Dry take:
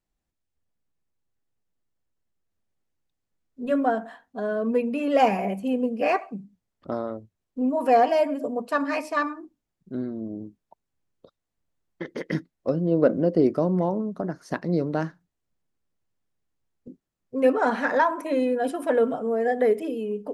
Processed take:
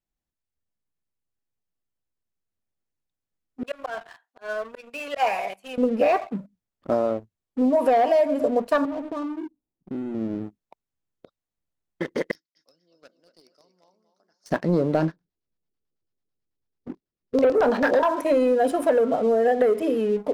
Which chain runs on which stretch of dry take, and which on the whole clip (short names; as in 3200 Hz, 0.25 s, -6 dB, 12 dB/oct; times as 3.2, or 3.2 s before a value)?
3.63–5.78 HPF 980 Hz + high shelf 7700 Hz -3.5 dB + auto swell 0.121 s
8.85–10.15 inverse Chebyshev low-pass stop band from 3700 Hz, stop band 60 dB + bell 300 Hz +10.5 dB 0.69 oct + compressor, threshold -33 dBFS
12.31–14.46 band-pass 5200 Hz, Q 4.2 + feedback echo 0.24 s, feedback 32%, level -9 dB
14.97–18.03 high shelf 5900 Hz -9 dB + LFO low-pass square 9.1 Hz 420–5000 Hz + doubler 25 ms -10.5 dB
whole clip: sample leveller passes 2; dynamic EQ 590 Hz, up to +6 dB, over -30 dBFS, Q 1.9; compressor 5:1, threshold -14 dBFS; gain -2.5 dB